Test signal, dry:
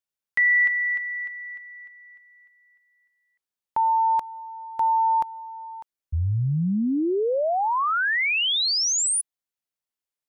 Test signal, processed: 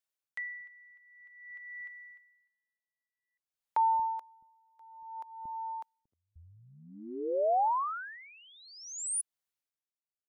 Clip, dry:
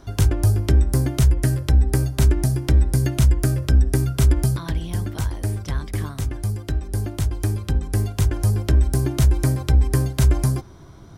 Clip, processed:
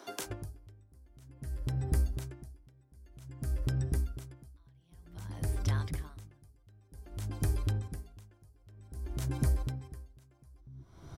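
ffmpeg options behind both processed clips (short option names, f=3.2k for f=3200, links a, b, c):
-filter_complex "[0:a]acrossover=split=300[a][b];[a]adelay=230[c];[c][b]amix=inputs=2:normalize=0,acompressor=threshold=-22dB:ratio=10:attack=0.52:release=321:knee=6:detection=rms,aeval=exprs='val(0)*pow(10,-31*(0.5-0.5*cos(2*PI*0.53*n/s))/20)':c=same"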